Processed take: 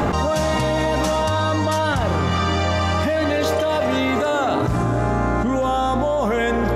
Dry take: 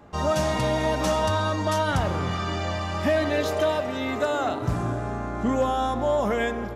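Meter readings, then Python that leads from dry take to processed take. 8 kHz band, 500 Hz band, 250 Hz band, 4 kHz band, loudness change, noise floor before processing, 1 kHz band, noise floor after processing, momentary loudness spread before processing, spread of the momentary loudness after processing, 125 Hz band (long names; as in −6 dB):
+4.5 dB, +4.5 dB, +6.0 dB, +5.5 dB, +5.0 dB, −31 dBFS, +5.5 dB, −20 dBFS, 5 LU, 1 LU, +6.0 dB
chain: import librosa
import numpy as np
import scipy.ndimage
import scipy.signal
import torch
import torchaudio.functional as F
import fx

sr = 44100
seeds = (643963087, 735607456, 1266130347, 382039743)

y = fx.env_flatten(x, sr, amount_pct=100)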